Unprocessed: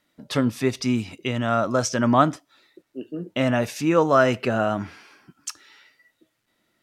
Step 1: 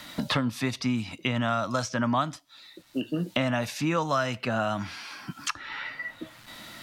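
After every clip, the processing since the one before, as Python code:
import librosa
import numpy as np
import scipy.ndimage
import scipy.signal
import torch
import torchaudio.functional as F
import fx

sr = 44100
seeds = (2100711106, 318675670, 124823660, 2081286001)

y = fx.graphic_eq_15(x, sr, hz=(400, 1000, 4000), db=(-11, 3, 5))
y = fx.band_squash(y, sr, depth_pct=100)
y = y * librosa.db_to_amplitude(-4.5)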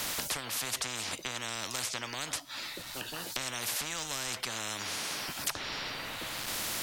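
y = fx.spectral_comp(x, sr, ratio=10.0)
y = y * librosa.db_to_amplitude(-6.0)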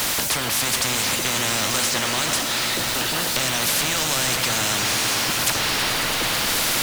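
y = x + 0.5 * 10.0 ** (-31.0 / 20.0) * np.sign(x)
y = fx.echo_swell(y, sr, ms=109, loudest=5, wet_db=-12)
y = y * librosa.db_to_amplitude(7.5)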